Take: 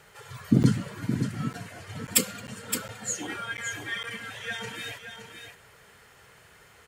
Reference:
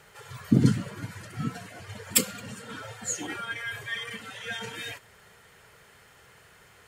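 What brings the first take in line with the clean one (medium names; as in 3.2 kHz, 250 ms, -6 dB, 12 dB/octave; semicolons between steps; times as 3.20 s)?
interpolate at 0.63/1.53/2.07/2.47/2.88/3.57/4.03 s, 9.5 ms; inverse comb 568 ms -8 dB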